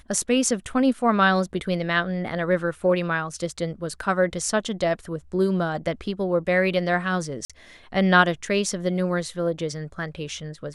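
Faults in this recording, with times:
7.45–7.5 gap 46 ms

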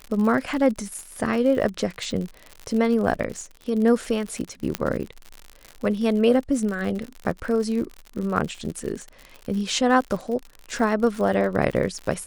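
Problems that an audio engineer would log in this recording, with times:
crackle 70/s -29 dBFS
4.75 pop -7 dBFS

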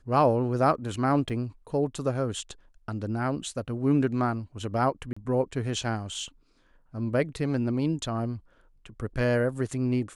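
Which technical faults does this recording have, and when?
1.29–1.3 gap 7 ms
5.13–5.17 gap 35 ms

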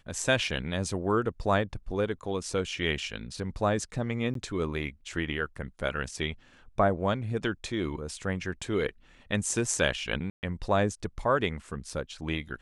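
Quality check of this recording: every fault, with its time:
4.34–4.35 gap 13 ms
10.3–10.43 gap 0.129 s

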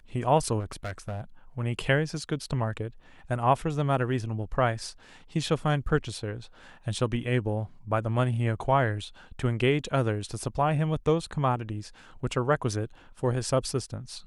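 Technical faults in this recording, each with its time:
0.59–1.21 clipped -29.5 dBFS

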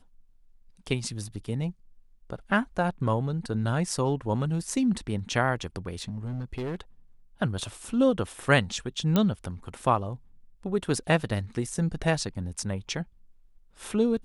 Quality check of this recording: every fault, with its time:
6.02–6.8 clipped -28.5 dBFS
9.16 pop -11 dBFS

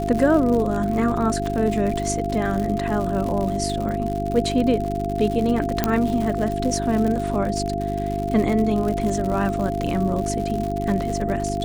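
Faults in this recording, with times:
crackle 110/s -26 dBFS
hum 50 Hz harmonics 8 -27 dBFS
tone 690 Hz -26 dBFS
5.84 pop -4 dBFS

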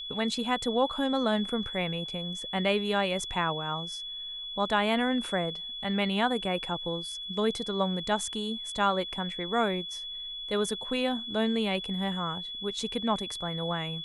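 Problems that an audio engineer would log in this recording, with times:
tone 3400 Hz -36 dBFS

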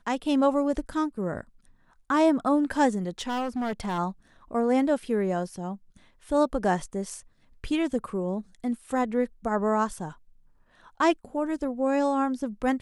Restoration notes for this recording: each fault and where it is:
3.2–3.99 clipped -26 dBFS

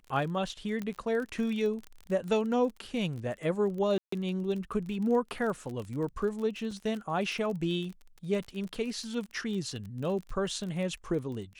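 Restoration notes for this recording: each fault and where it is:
crackle 32/s -36 dBFS
0.82 pop -23 dBFS
3.98–4.12 gap 0.144 s
6.71 gap 2.4 ms

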